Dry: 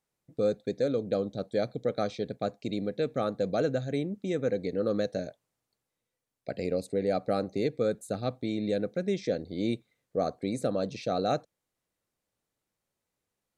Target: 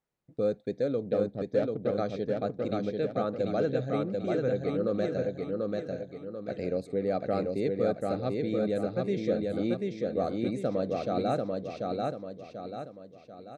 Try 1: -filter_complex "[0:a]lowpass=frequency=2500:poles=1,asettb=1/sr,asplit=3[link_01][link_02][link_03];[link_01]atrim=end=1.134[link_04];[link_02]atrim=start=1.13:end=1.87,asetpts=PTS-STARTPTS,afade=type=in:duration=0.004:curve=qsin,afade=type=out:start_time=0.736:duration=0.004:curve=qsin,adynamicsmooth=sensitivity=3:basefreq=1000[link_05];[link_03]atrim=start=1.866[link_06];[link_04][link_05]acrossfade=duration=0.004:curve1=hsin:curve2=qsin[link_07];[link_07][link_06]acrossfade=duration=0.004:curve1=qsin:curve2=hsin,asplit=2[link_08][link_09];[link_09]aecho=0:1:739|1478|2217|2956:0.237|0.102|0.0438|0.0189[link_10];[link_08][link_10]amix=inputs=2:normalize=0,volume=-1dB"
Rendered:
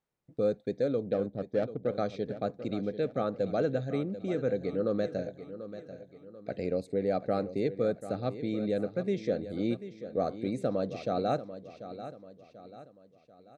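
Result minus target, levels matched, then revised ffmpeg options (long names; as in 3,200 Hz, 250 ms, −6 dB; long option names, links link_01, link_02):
echo-to-direct −10 dB
-filter_complex "[0:a]lowpass=frequency=2500:poles=1,asettb=1/sr,asplit=3[link_01][link_02][link_03];[link_01]atrim=end=1.134[link_04];[link_02]atrim=start=1.13:end=1.87,asetpts=PTS-STARTPTS,afade=type=in:duration=0.004:curve=qsin,afade=type=out:start_time=0.736:duration=0.004:curve=qsin,adynamicsmooth=sensitivity=3:basefreq=1000[link_05];[link_03]atrim=start=1.866[link_06];[link_04][link_05]acrossfade=duration=0.004:curve1=hsin:curve2=qsin[link_07];[link_07][link_06]acrossfade=duration=0.004:curve1=qsin:curve2=hsin,asplit=2[link_08][link_09];[link_09]aecho=0:1:739|1478|2217|2956|3695|4434:0.75|0.322|0.139|0.0596|0.0256|0.011[link_10];[link_08][link_10]amix=inputs=2:normalize=0,volume=-1dB"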